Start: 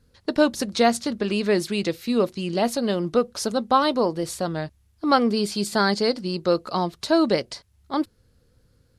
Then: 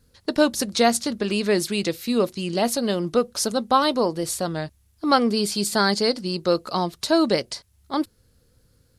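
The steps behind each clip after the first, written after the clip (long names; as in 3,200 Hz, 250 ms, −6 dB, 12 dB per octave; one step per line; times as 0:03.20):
high-shelf EQ 5,700 Hz +9 dB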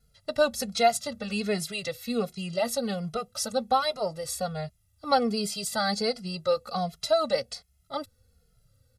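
comb filter 1.5 ms, depth 95%
barber-pole flanger 2.4 ms −1.3 Hz
level −5.5 dB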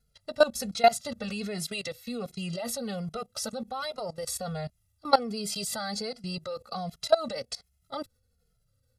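output level in coarse steps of 19 dB
level +4.5 dB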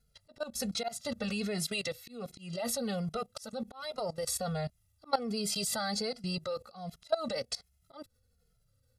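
volume swells 261 ms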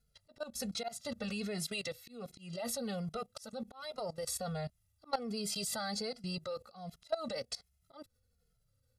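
soft clipping −16.5 dBFS, distortion −26 dB
level −4 dB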